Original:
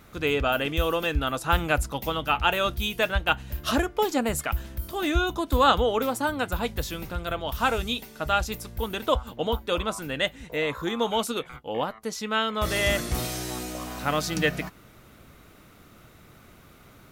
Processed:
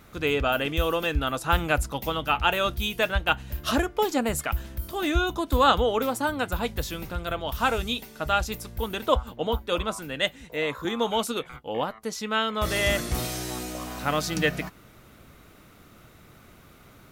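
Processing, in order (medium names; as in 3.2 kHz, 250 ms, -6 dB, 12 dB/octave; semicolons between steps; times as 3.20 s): 9.08–10.85 s: three bands expanded up and down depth 40%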